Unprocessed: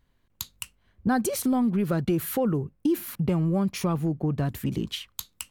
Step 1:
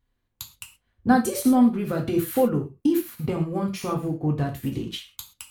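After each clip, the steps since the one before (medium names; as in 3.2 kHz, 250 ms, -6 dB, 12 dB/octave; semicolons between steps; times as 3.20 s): gated-style reverb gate 150 ms falling, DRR 0.5 dB; upward expansion 1.5:1, over -40 dBFS; trim +3 dB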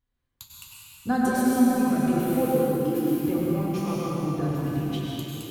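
plate-style reverb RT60 4 s, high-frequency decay 0.8×, pre-delay 85 ms, DRR -5.5 dB; trim -7.5 dB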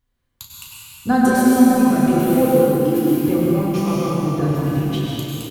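doubling 35 ms -9 dB; trim +7 dB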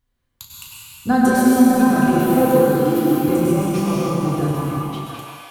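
fade out at the end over 1.19 s; repeats whose band climbs or falls 700 ms, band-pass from 1.1 kHz, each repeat 1.4 oct, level -1 dB; endings held to a fixed fall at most 170 dB/s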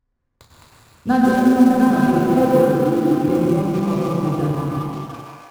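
median filter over 15 samples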